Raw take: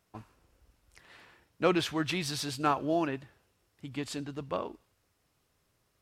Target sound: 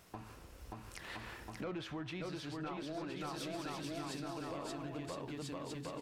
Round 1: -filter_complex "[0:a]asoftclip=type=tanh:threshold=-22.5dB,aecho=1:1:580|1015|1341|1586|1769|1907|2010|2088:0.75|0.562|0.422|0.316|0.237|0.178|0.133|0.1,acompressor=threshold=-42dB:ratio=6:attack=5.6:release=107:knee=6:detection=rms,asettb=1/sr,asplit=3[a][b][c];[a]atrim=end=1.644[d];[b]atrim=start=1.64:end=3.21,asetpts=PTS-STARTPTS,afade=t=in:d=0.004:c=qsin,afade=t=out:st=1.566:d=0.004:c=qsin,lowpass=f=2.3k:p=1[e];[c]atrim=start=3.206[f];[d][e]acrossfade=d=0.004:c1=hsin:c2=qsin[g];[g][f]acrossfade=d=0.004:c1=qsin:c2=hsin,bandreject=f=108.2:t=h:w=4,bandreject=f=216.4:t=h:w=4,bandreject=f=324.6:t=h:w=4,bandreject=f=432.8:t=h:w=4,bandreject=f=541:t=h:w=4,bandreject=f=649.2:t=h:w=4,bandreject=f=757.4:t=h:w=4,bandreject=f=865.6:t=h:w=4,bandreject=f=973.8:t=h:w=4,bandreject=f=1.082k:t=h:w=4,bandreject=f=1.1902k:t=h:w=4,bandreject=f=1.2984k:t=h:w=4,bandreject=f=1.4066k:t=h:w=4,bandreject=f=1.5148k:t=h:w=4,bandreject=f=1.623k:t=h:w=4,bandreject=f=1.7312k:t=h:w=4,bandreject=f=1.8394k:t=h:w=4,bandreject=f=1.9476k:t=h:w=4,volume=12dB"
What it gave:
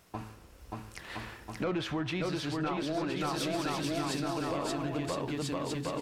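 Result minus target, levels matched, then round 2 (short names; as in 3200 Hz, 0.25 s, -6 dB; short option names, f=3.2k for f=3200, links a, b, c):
compressor: peak gain reduction -9.5 dB
-filter_complex "[0:a]asoftclip=type=tanh:threshold=-22.5dB,aecho=1:1:580|1015|1341|1586|1769|1907|2010|2088:0.75|0.562|0.422|0.316|0.237|0.178|0.133|0.1,acompressor=threshold=-53.5dB:ratio=6:attack=5.6:release=107:knee=6:detection=rms,asettb=1/sr,asplit=3[a][b][c];[a]atrim=end=1.644[d];[b]atrim=start=1.64:end=3.21,asetpts=PTS-STARTPTS,afade=t=in:d=0.004:c=qsin,afade=t=out:st=1.566:d=0.004:c=qsin,lowpass=f=2.3k:p=1[e];[c]atrim=start=3.206[f];[d][e]acrossfade=d=0.004:c1=hsin:c2=qsin[g];[g][f]acrossfade=d=0.004:c1=qsin:c2=hsin,bandreject=f=108.2:t=h:w=4,bandreject=f=216.4:t=h:w=4,bandreject=f=324.6:t=h:w=4,bandreject=f=432.8:t=h:w=4,bandreject=f=541:t=h:w=4,bandreject=f=649.2:t=h:w=4,bandreject=f=757.4:t=h:w=4,bandreject=f=865.6:t=h:w=4,bandreject=f=973.8:t=h:w=4,bandreject=f=1.082k:t=h:w=4,bandreject=f=1.1902k:t=h:w=4,bandreject=f=1.2984k:t=h:w=4,bandreject=f=1.4066k:t=h:w=4,bandreject=f=1.5148k:t=h:w=4,bandreject=f=1.623k:t=h:w=4,bandreject=f=1.7312k:t=h:w=4,bandreject=f=1.8394k:t=h:w=4,bandreject=f=1.9476k:t=h:w=4,volume=12dB"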